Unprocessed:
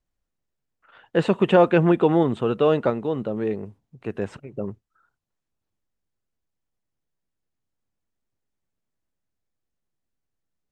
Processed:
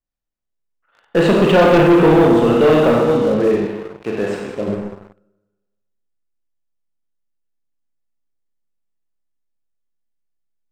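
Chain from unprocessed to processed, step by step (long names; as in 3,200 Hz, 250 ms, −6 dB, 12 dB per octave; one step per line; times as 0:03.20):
parametric band 100 Hz −4.5 dB
four-comb reverb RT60 1.3 s, combs from 26 ms, DRR −1.5 dB
leveller curve on the samples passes 3
0:03.66–0:04.68: low-shelf EQ 160 Hz −9 dB
level −3.5 dB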